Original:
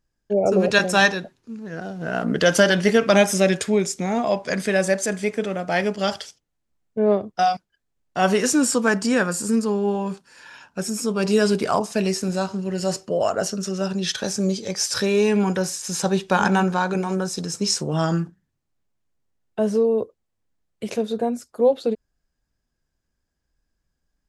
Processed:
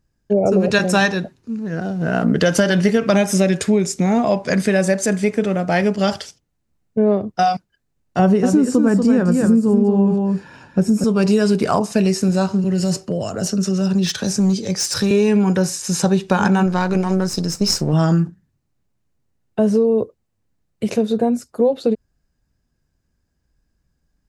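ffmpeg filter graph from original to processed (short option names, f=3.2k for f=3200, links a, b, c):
-filter_complex "[0:a]asettb=1/sr,asplit=3[a][b][c];[a]atrim=end=8.194[d];[b]atrim=start=8.19:end=11.04,asetpts=PTS-STARTPTS,afade=t=in:d=0.004:c=qsin,afade=t=out:st=2.846:d=0.004:c=qsin,tiltshelf=f=850:g=7.5,aecho=1:1:235:0.447,atrim=end_sample=125685[e];[c]atrim=start=11.036[f];[d][e]acrossfade=d=0.004:c1=hsin:c2=qsin[g];[g][f]acrossfade=d=0.004:c1=qsin:c2=hsin,asettb=1/sr,asplit=3[h][i][j];[h]atrim=end=12.644[k];[i]atrim=start=12.64:end=15.11,asetpts=PTS-STARTPTS,afade=t=in:d=0.004:c=qsin,afade=t=out:st=2.466:d=0.004:c=qsin,highpass=f=49:w=0.5412,highpass=f=49:w=1.3066,acrossover=split=290|3000[l][m][n];[m]acompressor=threshold=-30dB:ratio=6:attack=3.2:release=140:knee=2.83:detection=peak[o];[l][o][n]amix=inputs=3:normalize=0,asoftclip=type=hard:threshold=-19dB[p];[j]atrim=start=15.106[q];[k][p]acrossfade=d=0.004:c1=hsin:c2=qsin[r];[r][q]acrossfade=d=0.004:c1=qsin:c2=hsin,asettb=1/sr,asplit=3[s][t][u];[s]atrim=end=16.664[v];[t]atrim=start=16.66:end=17.93,asetpts=PTS-STARTPTS,afade=t=in:d=0.004:c=qsin,afade=t=out:st=1.266:d=0.004:c=qsin,aeval=exprs='if(lt(val(0),0),0.447*val(0),val(0))':c=same,equalizer=f=5k:w=4:g=6[w];[u]atrim=start=17.926[x];[v][w]acrossfade=d=0.004:c1=hsin:c2=qsin[y];[y][x]acrossfade=d=0.004:c1=qsin:c2=hsin,equalizer=f=110:w=0.39:g=8,bandreject=f=3.3k:w=19,acompressor=threshold=-15dB:ratio=6,volume=3.5dB"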